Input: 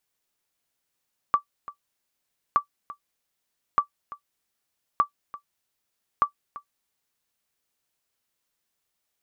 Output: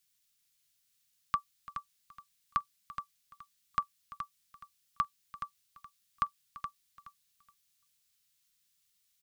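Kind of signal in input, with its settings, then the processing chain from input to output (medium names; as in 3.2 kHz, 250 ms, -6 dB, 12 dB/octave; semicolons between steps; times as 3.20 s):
sonar ping 1.16 kHz, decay 0.10 s, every 1.22 s, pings 5, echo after 0.34 s, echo -18 dB -10 dBFS
FFT filter 190 Hz 0 dB, 390 Hz -29 dB, 1.2 kHz -7 dB, 3.7 kHz +5 dB; on a send: feedback delay 422 ms, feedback 22%, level -9 dB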